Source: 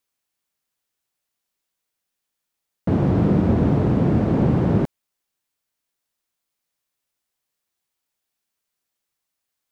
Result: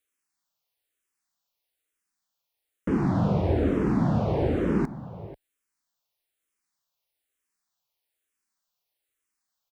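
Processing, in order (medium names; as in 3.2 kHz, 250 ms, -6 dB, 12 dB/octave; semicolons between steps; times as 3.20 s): peaking EQ 140 Hz -5.5 dB 2.3 oct; echo from a far wall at 84 m, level -15 dB; barber-pole phaser -1.1 Hz; trim +1 dB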